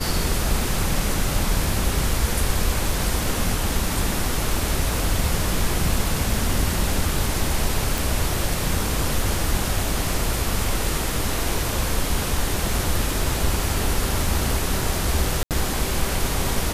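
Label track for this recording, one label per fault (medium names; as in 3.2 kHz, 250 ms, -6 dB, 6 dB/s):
7.980000	7.980000	pop
15.430000	15.510000	dropout 78 ms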